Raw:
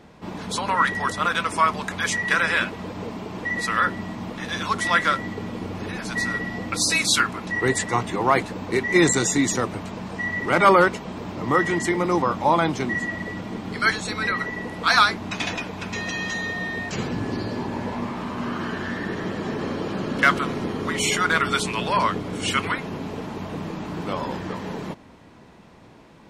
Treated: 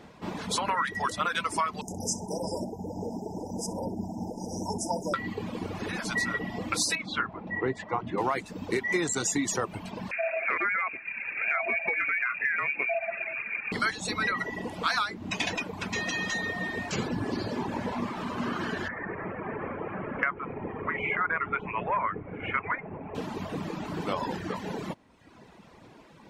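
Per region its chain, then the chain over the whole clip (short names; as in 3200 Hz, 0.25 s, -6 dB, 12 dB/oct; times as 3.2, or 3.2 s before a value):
1.81–5.14 brick-wall FIR band-stop 980–4900 Hz + feedback echo 64 ms, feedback 34%, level -8.5 dB
6.95–8.18 tape spacing loss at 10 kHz 36 dB + notches 60/120/180/240/300/360/420 Hz
10.11–13.72 inverted band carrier 2600 Hz + compressor 2.5:1, threshold -19 dBFS + HPF 96 Hz
18.88–23.15 elliptic low-pass 2300 Hz, stop band 50 dB + bell 250 Hz -7 dB 1.4 oct
whole clip: low shelf 130 Hz -4.5 dB; reverb removal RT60 1 s; compressor 12:1, threshold -24 dBFS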